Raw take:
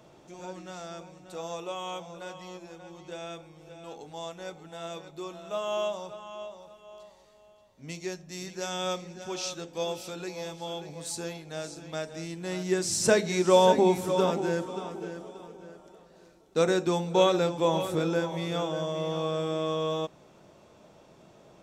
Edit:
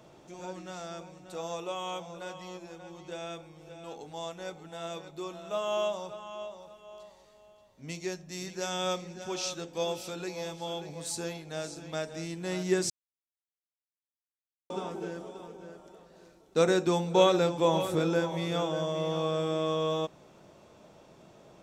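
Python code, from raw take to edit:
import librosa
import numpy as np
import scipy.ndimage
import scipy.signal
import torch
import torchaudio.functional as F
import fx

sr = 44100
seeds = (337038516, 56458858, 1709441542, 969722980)

y = fx.edit(x, sr, fx.silence(start_s=12.9, length_s=1.8), tone=tone)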